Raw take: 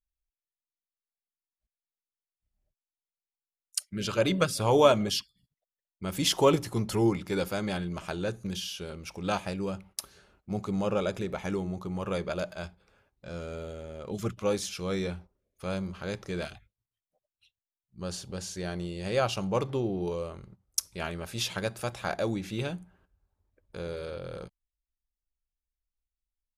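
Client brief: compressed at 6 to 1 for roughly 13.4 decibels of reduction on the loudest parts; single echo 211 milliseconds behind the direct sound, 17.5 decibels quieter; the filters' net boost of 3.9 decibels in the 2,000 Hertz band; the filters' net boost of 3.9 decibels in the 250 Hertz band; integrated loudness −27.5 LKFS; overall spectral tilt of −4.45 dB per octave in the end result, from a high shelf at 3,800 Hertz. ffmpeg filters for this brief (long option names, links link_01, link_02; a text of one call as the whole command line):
ffmpeg -i in.wav -af "equalizer=frequency=250:width_type=o:gain=5.5,equalizer=frequency=2000:width_type=o:gain=4,highshelf=frequency=3800:gain=4.5,acompressor=threshold=-28dB:ratio=6,aecho=1:1:211:0.133,volume=6.5dB" out.wav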